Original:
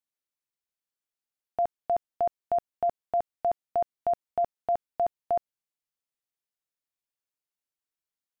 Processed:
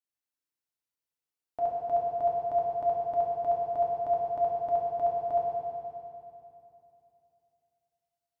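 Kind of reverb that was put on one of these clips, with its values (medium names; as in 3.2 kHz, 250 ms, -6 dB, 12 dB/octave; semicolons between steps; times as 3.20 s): FDN reverb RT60 2.8 s, low-frequency decay 1.2×, high-frequency decay 1×, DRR -5 dB; trim -7.5 dB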